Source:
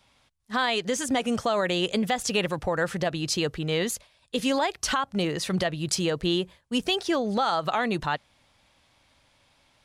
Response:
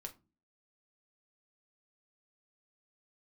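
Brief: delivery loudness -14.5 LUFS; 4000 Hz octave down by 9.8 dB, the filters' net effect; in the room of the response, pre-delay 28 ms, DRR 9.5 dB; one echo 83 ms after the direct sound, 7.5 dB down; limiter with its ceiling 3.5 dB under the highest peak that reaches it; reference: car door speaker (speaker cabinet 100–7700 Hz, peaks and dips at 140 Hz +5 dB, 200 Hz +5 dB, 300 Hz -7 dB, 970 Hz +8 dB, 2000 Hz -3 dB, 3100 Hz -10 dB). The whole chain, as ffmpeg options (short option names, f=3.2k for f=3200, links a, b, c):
-filter_complex "[0:a]equalizer=f=4k:t=o:g=-6.5,alimiter=limit=-18dB:level=0:latency=1,aecho=1:1:83:0.422,asplit=2[a][b];[1:a]atrim=start_sample=2205,adelay=28[c];[b][c]afir=irnorm=-1:irlink=0,volume=-5.5dB[d];[a][d]amix=inputs=2:normalize=0,highpass=100,equalizer=f=140:t=q:w=4:g=5,equalizer=f=200:t=q:w=4:g=5,equalizer=f=300:t=q:w=4:g=-7,equalizer=f=970:t=q:w=4:g=8,equalizer=f=2k:t=q:w=4:g=-3,equalizer=f=3.1k:t=q:w=4:g=-10,lowpass=f=7.7k:w=0.5412,lowpass=f=7.7k:w=1.3066,volume=12dB"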